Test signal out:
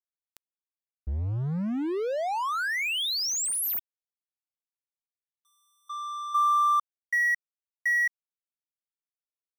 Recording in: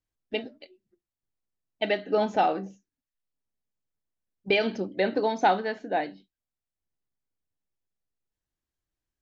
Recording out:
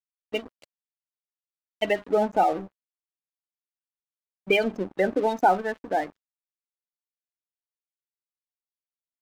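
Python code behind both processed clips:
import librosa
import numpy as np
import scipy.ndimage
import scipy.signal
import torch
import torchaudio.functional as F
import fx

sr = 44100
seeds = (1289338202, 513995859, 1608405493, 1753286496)

y = fx.quant_dither(x, sr, seeds[0], bits=8, dither='none')
y = fx.spec_gate(y, sr, threshold_db=-20, keep='strong')
y = np.sign(y) * np.maximum(np.abs(y) - 10.0 ** (-41.5 / 20.0), 0.0)
y = F.gain(torch.from_numpy(y), 3.0).numpy()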